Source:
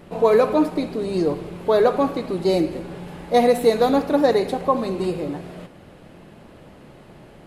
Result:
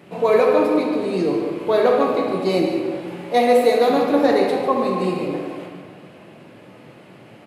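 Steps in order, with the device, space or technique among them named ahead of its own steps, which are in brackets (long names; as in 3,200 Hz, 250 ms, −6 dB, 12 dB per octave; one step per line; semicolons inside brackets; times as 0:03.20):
0:03.11–0:03.90: high-pass filter 260 Hz 12 dB per octave
PA in a hall (high-pass filter 110 Hz 24 dB per octave; parametric band 2,400 Hz +6 dB 0.75 octaves; single-tap delay 146 ms −11 dB; convolution reverb RT60 2.0 s, pre-delay 13 ms, DRR 0.5 dB)
level −2 dB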